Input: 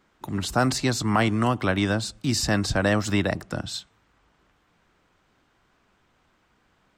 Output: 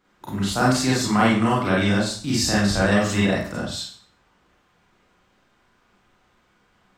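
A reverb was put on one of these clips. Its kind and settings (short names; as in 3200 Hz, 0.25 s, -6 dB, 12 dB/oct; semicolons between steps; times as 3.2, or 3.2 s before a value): Schroeder reverb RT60 0.46 s, combs from 31 ms, DRR -6.5 dB; gain -4 dB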